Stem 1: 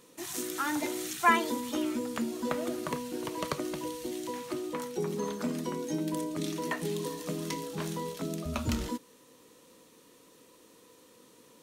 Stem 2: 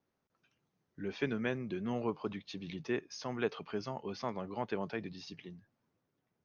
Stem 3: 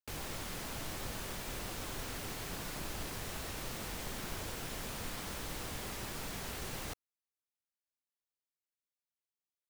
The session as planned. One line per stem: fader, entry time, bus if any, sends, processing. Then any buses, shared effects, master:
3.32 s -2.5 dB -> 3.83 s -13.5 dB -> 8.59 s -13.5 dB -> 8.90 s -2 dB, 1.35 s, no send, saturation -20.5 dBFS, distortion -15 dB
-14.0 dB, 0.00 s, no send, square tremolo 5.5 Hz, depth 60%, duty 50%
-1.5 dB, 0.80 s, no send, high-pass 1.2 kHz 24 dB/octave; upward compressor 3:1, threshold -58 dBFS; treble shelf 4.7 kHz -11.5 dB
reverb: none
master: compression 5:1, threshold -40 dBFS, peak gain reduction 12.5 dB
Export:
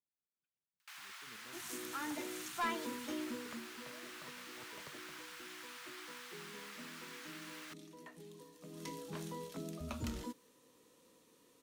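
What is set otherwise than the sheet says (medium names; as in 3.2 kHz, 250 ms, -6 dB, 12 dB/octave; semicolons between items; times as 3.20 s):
stem 1 -2.5 dB -> -9.5 dB; stem 2 -14.0 dB -> -24.5 dB; master: missing compression 5:1, threshold -40 dBFS, peak gain reduction 12.5 dB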